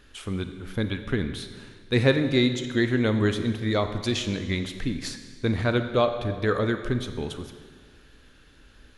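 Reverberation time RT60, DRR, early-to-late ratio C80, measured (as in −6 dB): 1.8 s, 8.0 dB, 10.5 dB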